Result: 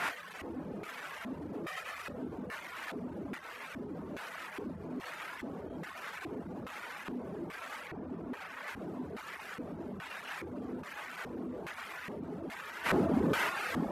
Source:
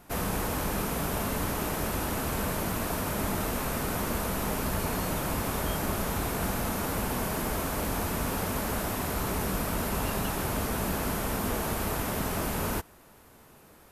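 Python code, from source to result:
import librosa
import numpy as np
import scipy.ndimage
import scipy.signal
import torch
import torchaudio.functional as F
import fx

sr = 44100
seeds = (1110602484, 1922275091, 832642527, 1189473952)

y = fx.lower_of_two(x, sr, delay_ms=1.6, at=(1.62, 2.18))
y = scipy.signal.sosfilt(scipy.signal.butter(2, 50.0, 'highpass', fs=sr, output='sos'), y)
y = fx.room_early_taps(y, sr, ms=(24, 36), db=(-3.0, -3.0))
y = 10.0 ** (-32.0 / 20.0) * np.tanh(y / 10.0 ** (-32.0 / 20.0))
y = fx.low_shelf(y, sr, hz=490.0, db=3.0, at=(3.39, 3.95))
y = fx.echo_feedback(y, sr, ms=659, feedback_pct=38, wet_db=-14)
y = fx.over_compress(y, sr, threshold_db=-47.0, ratio=-1.0)
y = fx.high_shelf(y, sr, hz=3000.0, db=-6.0, at=(7.87, 8.68))
y = fx.dereverb_blind(y, sr, rt60_s=1.3)
y = fx.filter_lfo_bandpass(y, sr, shape='square', hz=1.2, low_hz=300.0, high_hz=1900.0, q=1.6)
y = F.gain(torch.from_numpy(y), 17.5).numpy()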